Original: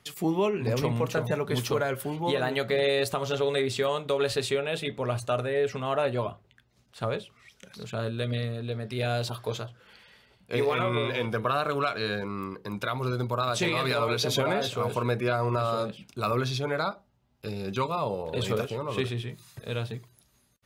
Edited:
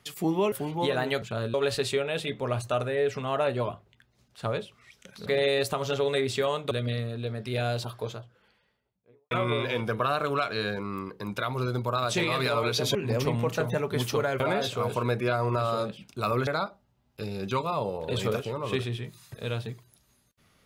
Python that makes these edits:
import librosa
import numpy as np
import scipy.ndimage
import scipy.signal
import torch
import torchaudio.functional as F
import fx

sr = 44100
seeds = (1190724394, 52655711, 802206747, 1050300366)

y = fx.studio_fade_out(x, sr, start_s=8.95, length_s=1.81)
y = fx.edit(y, sr, fx.move(start_s=0.52, length_s=1.45, to_s=14.4),
    fx.swap(start_s=2.67, length_s=1.45, other_s=7.84, other_length_s=0.32),
    fx.cut(start_s=16.47, length_s=0.25), tone=tone)